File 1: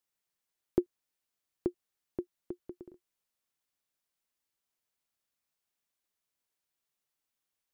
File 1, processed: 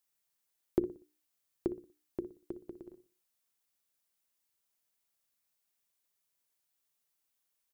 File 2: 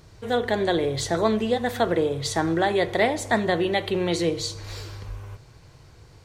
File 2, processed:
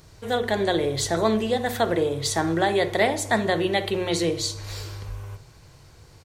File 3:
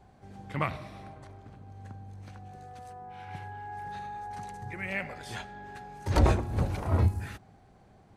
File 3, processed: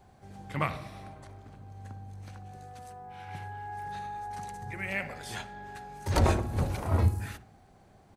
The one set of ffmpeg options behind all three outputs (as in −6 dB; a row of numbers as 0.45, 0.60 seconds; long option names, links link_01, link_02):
-filter_complex "[0:a]highshelf=frequency=6700:gain=7.5,bandreject=frequency=60:width_type=h:width=6,bandreject=frequency=120:width_type=h:width=6,bandreject=frequency=180:width_type=h:width=6,bandreject=frequency=240:width_type=h:width=6,bandreject=frequency=300:width_type=h:width=6,bandreject=frequency=360:width_type=h:width=6,bandreject=frequency=420:width_type=h:width=6,bandreject=frequency=480:width_type=h:width=6,asplit=2[link_01][link_02];[link_02]adelay=60,lowpass=frequency=1900:poles=1,volume=-14dB,asplit=2[link_03][link_04];[link_04]adelay=60,lowpass=frequency=1900:poles=1,volume=0.37,asplit=2[link_05][link_06];[link_06]adelay=60,lowpass=frequency=1900:poles=1,volume=0.37,asplit=2[link_07][link_08];[link_08]adelay=60,lowpass=frequency=1900:poles=1,volume=0.37[link_09];[link_03][link_05][link_07][link_09]amix=inputs=4:normalize=0[link_10];[link_01][link_10]amix=inputs=2:normalize=0"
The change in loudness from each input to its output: −1.0, 0.0, −0.5 LU